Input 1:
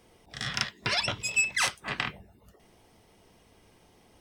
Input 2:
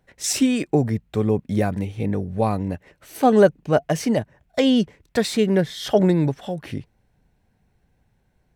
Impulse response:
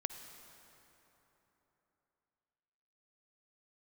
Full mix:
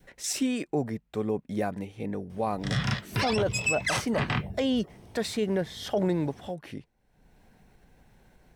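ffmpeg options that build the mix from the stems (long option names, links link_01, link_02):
-filter_complex "[0:a]equalizer=frequency=110:width=0.39:gain=14.5,adelay=2300,volume=0.5dB[link_01];[1:a]equalizer=frequency=91:width=1.1:gain=-8.5,acompressor=mode=upward:threshold=-35dB:ratio=2.5,volume=-7.5dB[link_02];[link_01][link_02]amix=inputs=2:normalize=0,adynamicequalizer=threshold=0.0251:dfrequency=830:dqfactor=0.84:tfrequency=830:tqfactor=0.84:attack=5:release=100:ratio=0.375:range=2:mode=boostabove:tftype=bell,alimiter=limit=-18dB:level=0:latency=1:release=11"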